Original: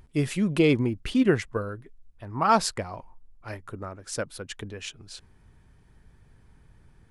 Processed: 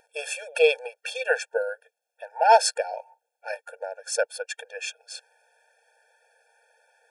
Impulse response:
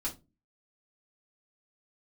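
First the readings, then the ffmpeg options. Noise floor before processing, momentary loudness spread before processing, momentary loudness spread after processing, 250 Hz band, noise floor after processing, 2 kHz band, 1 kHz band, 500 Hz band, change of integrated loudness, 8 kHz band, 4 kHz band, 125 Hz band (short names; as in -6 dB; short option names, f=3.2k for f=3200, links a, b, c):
-58 dBFS, 21 LU, 22 LU, under -35 dB, -83 dBFS, +6.0 dB, +4.5 dB, +4.0 dB, +1.0 dB, +5.0 dB, +3.5 dB, under -40 dB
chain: -af "bandreject=f=3.8k:w=6.4,afftfilt=real='re*eq(mod(floor(b*sr/1024/460),2),1)':imag='im*eq(mod(floor(b*sr/1024/460),2),1)':win_size=1024:overlap=0.75,volume=8dB"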